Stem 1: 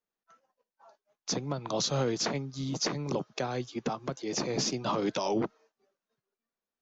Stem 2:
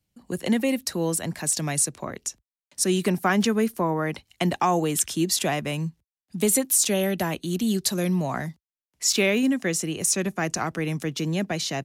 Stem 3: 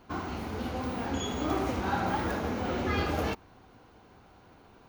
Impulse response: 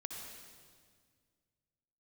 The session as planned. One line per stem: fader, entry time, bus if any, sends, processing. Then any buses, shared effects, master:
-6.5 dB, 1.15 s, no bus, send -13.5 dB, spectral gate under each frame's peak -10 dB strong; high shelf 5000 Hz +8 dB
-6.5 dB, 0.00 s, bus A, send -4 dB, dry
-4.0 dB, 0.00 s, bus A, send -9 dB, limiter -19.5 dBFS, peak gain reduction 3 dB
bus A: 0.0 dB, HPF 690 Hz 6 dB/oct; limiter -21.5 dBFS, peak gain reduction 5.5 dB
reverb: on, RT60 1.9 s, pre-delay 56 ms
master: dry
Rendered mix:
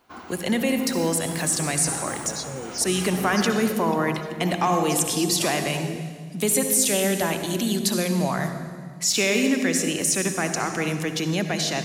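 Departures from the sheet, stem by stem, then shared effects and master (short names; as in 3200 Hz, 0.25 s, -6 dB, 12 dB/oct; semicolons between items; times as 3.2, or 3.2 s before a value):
stem 1: entry 1.15 s -> 0.55 s; stem 2 -6.5 dB -> +4.5 dB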